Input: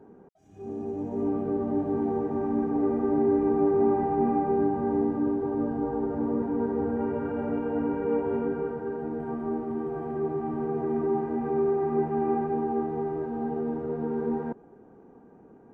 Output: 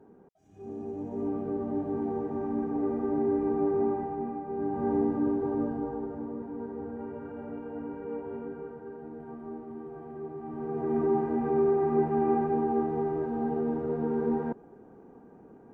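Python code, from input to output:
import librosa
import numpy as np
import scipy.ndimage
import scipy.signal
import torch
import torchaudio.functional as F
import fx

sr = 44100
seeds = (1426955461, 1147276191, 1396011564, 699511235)

y = fx.gain(x, sr, db=fx.line((3.79, -4.0), (4.44, -12.0), (4.86, -1.0), (5.56, -1.0), (6.34, -10.0), (10.37, -10.0), (10.98, 0.5)))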